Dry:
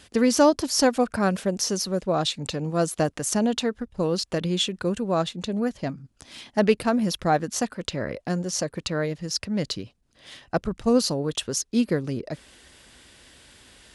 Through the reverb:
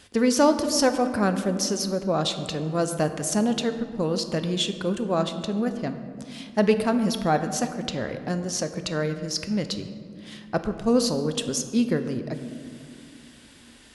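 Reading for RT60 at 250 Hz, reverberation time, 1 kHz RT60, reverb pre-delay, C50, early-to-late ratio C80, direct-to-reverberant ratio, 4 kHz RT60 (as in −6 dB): 3.6 s, 2.4 s, 2.1 s, 4 ms, 10.0 dB, 11.0 dB, 8.0 dB, 1.1 s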